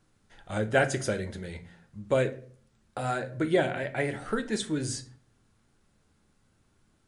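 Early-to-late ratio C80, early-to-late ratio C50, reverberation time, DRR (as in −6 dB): 20.0 dB, 16.0 dB, 0.50 s, 7.5 dB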